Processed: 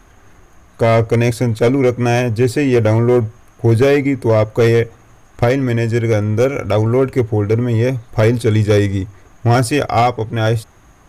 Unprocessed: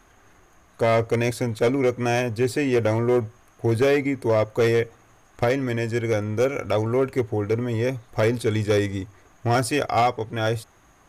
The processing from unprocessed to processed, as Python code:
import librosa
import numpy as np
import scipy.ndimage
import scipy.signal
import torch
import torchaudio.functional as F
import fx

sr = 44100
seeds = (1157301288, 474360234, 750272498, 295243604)

y = fx.low_shelf(x, sr, hz=220.0, db=7.5)
y = y * 10.0 ** (5.5 / 20.0)